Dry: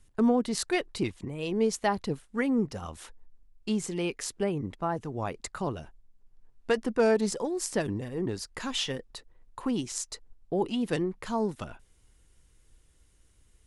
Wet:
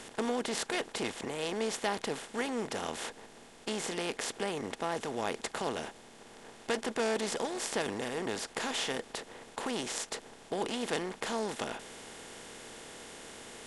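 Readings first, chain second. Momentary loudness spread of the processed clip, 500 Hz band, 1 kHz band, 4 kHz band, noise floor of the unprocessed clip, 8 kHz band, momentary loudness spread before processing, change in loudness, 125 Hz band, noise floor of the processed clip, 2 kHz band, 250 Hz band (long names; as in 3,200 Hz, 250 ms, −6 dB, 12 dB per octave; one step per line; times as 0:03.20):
13 LU, −4.5 dB, −1.5 dB, +0.5 dB, −63 dBFS, −1.0 dB, 15 LU, −5.0 dB, −11.0 dB, −54 dBFS, +0.5 dB, −8.5 dB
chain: compressor on every frequency bin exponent 0.4
low-shelf EQ 300 Hz −11 dB
level −7.5 dB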